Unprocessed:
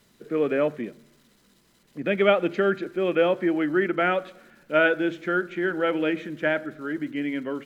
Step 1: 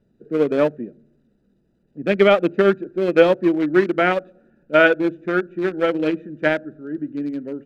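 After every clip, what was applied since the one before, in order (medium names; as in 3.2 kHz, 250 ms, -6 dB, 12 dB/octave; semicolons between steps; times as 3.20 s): local Wiener filter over 41 samples; loudness maximiser +9.5 dB; upward expansion 1.5:1, over -24 dBFS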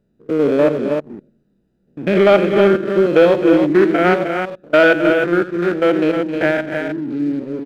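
spectrogram pixelated in time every 100 ms; multi-tap echo 87/264/311 ms -15/-13.5/-7 dB; waveshaping leveller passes 1; trim +2 dB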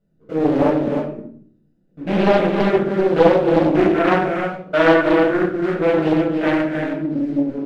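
reverberation RT60 0.55 s, pre-delay 6 ms, DRR -6 dB; loudspeaker Doppler distortion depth 0.5 ms; trim -12.5 dB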